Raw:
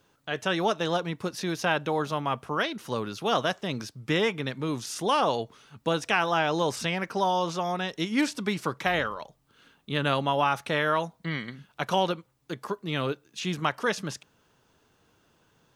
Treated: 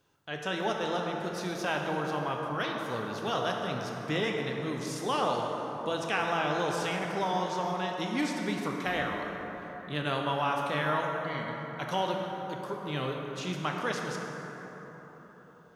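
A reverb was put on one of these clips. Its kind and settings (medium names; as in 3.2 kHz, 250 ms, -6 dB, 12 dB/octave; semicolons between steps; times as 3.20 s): plate-style reverb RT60 4.5 s, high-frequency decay 0.4×, DRR 0 dB; trim -6.5 dB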